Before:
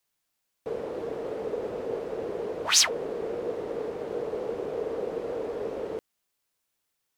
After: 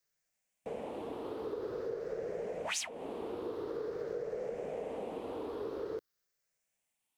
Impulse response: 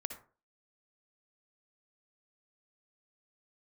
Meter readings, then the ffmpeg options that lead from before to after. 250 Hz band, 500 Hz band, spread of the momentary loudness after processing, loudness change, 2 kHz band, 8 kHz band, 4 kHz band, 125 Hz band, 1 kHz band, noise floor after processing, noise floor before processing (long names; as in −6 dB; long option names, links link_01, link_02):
−5.5 dB, −7.0 dB, 6 LU, −10.0 dB, −10.5 dB, −16.5 dB, −17.5 dB, −6.5 dB, −7.0 dB, −84 dBFS, −80 dBFS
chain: -af "afftfilt=real='re*pow(10,9/40*sin(2*PI*(0.56*log(max(b,1)*sr/1024/100)/log(2)-(0.48)*(pts-256)/sr)))':imag='im*pow(10,9/40*sin(2*PI*(0.56*log(max(b,1)*sr/1024/100)/log(2)-(0.48)*(pts-256)/sr)))':win_size=1024:overlap=0.75,acompressor=threshold=-29dB:ratio=6,volume=-5.5dB"